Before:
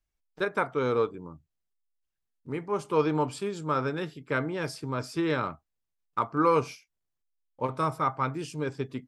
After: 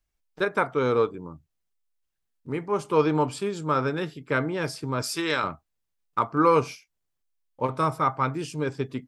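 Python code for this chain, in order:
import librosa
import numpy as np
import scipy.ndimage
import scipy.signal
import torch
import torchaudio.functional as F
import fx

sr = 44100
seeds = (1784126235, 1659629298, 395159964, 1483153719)

y = fx.tilt_eq(x, sr, slope=3.5, at=(5.02, 5.44))
y = y * librosa.db_to_amplitude(3.5)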